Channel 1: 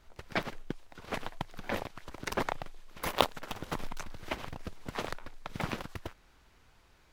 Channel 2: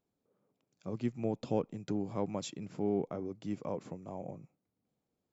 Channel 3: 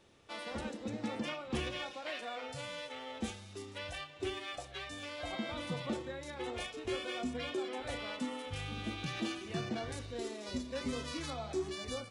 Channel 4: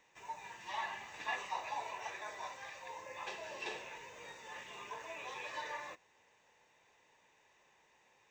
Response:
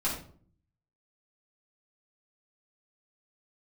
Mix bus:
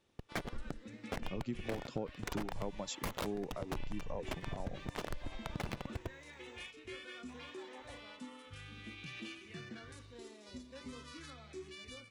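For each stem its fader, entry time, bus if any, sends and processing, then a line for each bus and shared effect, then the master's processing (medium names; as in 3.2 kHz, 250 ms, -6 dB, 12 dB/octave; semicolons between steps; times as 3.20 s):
-13.5 dB, 0.00 s, no send, local Wiener filter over 41 samples; bass shelf 150 Hz +7 dB; fuzz box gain 32 dB, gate -37 dBFS
+2.0 dB, 0.45 s, no send, reverb removal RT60 1.6 s
-10.0 dB, 0.00 s, no send, peaking EQ 740 Hz -10 dB 0.9 oct; sweeping bell 0.38 Hz 760–2500 Hz +8 dB
-9.0 dB, 2.05 s, muted 6.71–7.28 s, no send, compression, threshold -46 dBFS, peak gain reduction 12 dB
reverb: none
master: compression, threshold -35 dBFS, peak gain reduction 11 dB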